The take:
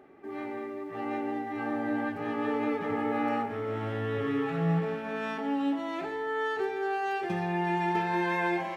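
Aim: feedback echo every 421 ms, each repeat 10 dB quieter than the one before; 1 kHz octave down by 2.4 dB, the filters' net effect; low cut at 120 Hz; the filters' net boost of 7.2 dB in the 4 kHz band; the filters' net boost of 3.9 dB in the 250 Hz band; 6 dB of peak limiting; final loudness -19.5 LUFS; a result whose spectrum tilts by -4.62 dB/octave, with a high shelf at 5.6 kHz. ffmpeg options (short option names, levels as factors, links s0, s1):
-af "highpass=120,equalizer=f=250:t=o:g=5.5,equalizer=f=1000:t=o:g=-4,equalizer=f=4000:t=o:g=8.5,highshelf=f=5600:g=4.5,alimiter=limit=0.075:level=0:latency=1,aecho=1:1:421|842|1263|1684:0.316|0.101|0.0324|0.0104,volume=3.55"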